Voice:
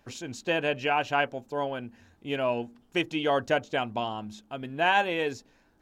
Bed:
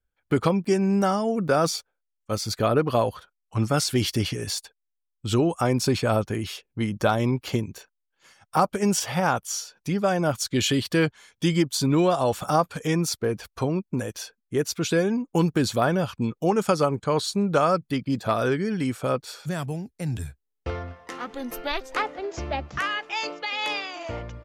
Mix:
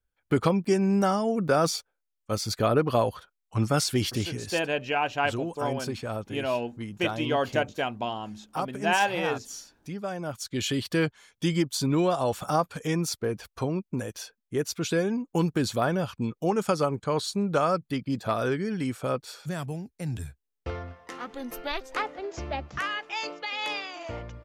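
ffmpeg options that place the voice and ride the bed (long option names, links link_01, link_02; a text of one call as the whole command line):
ffmpeg -i stem1.wav -i stem2.wav -filter_complex "[0:a]adelay=4050,volume=-0.5dB[link_01];[1:a]volume=5.5dB,afade=type=out:start_time=3.81:duration=0.86:silence=0.354813,afade=type=in:start_time=10.26:duration=0.68:silence=0.446684[link_02];[link_01][link_02]amix=inputs=2:normalize=0" out.wav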